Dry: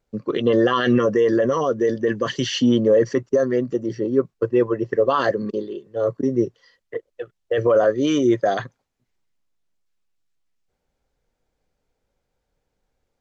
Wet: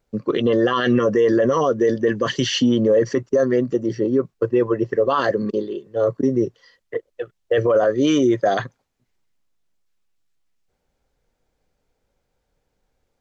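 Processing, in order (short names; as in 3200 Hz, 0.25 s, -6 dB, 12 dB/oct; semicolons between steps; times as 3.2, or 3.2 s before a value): limiter -12 dBFS, peak gain reduction 5.5 dB; gain +3 dB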